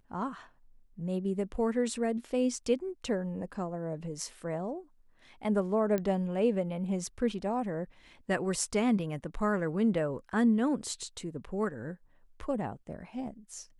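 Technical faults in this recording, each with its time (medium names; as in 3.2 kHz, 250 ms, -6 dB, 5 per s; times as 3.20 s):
5.98 s: pop -19 dBFS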